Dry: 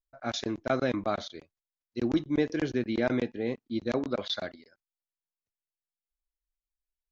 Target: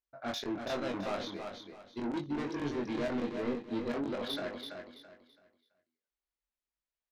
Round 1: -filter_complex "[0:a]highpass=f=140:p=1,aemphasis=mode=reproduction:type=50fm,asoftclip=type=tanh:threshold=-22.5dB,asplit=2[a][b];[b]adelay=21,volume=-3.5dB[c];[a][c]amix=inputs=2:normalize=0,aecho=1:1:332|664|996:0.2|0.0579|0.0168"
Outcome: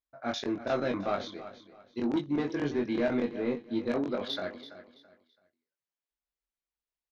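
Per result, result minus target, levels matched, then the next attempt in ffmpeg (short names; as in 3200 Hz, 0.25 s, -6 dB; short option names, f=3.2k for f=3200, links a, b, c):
soft clip: distortion -9 dB; echo-to-direct -7.5 dB
-filter_complex "[0:a]highpass=f=140:p=1,aemphasis=mode=reproduction:type=50fm,asoftclip=type=tanh:threshold=-33dB,asplit=2[a][b];[b]adelay=21,volume=-3.5dB[c];[a][c]amix=inputs=2:normalize=0,aecho=1:1:332|664|996:0.2|0.0579|0.0168"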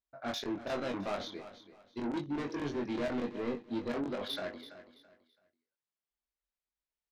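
echo-to-direct -7.5 dB
-filter_complex "[0:a]highpass=f=140:p=1,aemphasis=mode=reproduction:type=50fm,asoftclip=type=tanh:threshold=-33dB,asplit=2[a][b];[b]adelay=21,volume=-3.5dB[c];[a][c]amix=inputs=2:normalize=0,aecho=1:1:332|664|996|1328:0.473|0.137|0.0398|0.0115"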